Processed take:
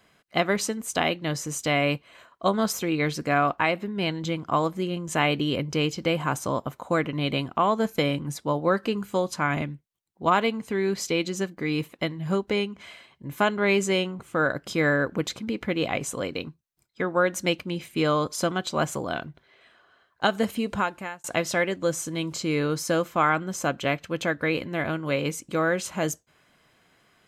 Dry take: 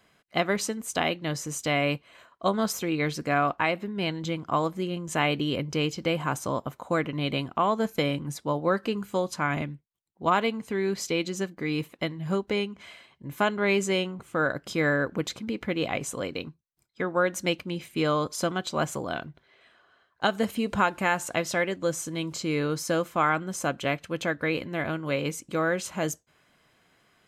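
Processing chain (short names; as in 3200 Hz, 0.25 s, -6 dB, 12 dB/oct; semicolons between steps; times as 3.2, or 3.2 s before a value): 20.24–21.24 fade out equal-power; 23.05–24.21 bell 9600 Hz -9.5 dB 0.21 oct; gain +2 dB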